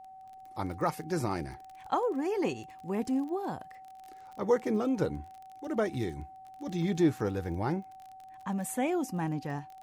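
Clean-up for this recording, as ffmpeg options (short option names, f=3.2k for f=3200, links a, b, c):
-af "adeclick=t=4,bandreject=f=760:w=30"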